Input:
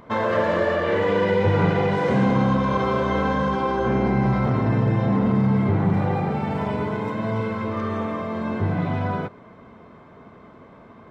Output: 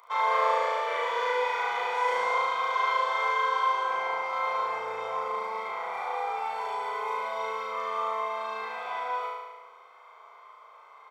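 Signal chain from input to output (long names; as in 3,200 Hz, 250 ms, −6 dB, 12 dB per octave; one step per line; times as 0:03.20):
elliptic high-pass filter 480 Hz, stop band 40 dB
high-shelf EQ 5,000 Hz +8 dB
comb filter 0.9 ms, depth 68%
flutter between parallel walls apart 6.2 metres, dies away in 1.2 s
level −8 dB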